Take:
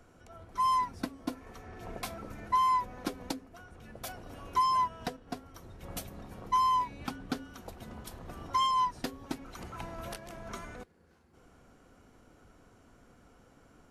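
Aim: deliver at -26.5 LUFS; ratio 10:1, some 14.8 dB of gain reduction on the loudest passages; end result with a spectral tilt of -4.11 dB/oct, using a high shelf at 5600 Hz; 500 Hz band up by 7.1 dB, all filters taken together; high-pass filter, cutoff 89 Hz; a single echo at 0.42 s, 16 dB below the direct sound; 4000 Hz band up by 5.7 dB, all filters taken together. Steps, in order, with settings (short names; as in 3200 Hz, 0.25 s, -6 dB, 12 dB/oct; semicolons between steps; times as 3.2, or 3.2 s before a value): HPF 89 Hz; bell 500 Hz +9 dB; bell 4000 Hz +4.5 dB; high shelf 5600 Hz +8 dB; compressor 10:1, threshold -37 dBFS; echo 0.42 s -16 dB; gain +16 dB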